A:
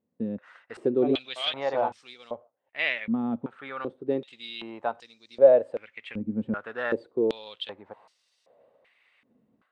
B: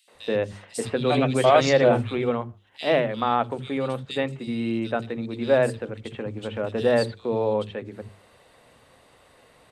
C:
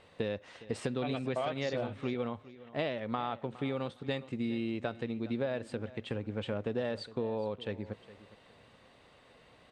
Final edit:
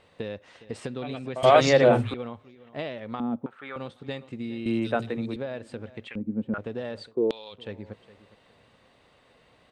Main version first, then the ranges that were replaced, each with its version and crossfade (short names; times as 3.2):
C
1.43–2.14 from B
3.2–3.76 from A
4.66–5.36 from B
6.08–6.58 from A
7.11–7.55 from A, crossfade 0.10 s